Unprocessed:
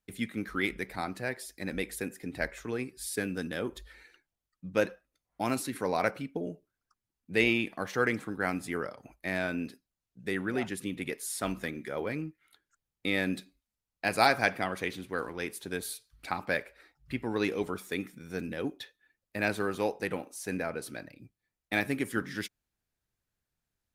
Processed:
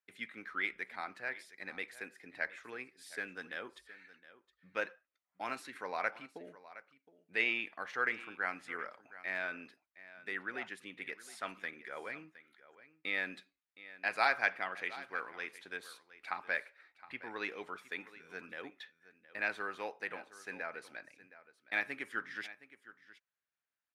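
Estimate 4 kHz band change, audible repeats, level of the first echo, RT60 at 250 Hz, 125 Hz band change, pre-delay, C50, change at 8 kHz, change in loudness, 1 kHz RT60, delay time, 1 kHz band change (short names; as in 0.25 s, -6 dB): -8.0 dB, 1, -17.0 dB, none, under -20 dB, none, none, -16.5 dB, -6.0 dB, none, 0.716 s, -6.0 dB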